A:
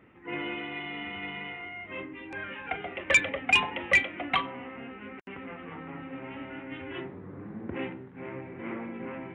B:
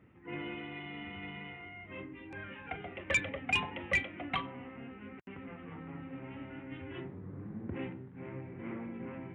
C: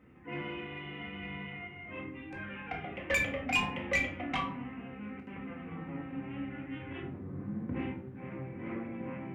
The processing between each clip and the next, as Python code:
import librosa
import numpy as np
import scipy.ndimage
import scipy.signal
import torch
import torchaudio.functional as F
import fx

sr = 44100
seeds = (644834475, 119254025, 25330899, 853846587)

y1 = fx.peak_eq(x, sr, hz=100.0, db=10.5, octaves=2.5)
y1 = y1 * librosa.db_to_amplitude(-8.5)
y2 = 10.0 ** (-24.5 / 20.0) * np.tanh(y1 / 10.0 ** (-24.5 / 20.0))
y2 = fx.room_shoebox(y2, sr, seeds[0], volume_m3=370.0, walls='furnished', distance_m=2.0)